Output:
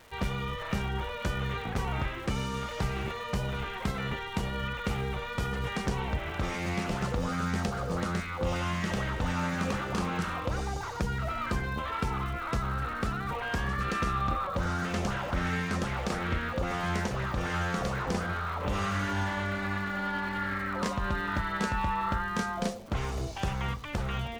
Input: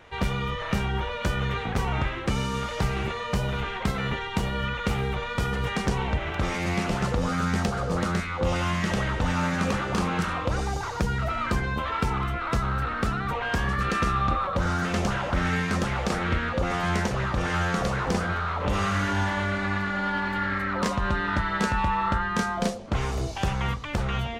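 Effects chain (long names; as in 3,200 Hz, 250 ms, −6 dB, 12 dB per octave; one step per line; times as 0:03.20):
surface crackle 390 per second −39 dBFS
level −5 dB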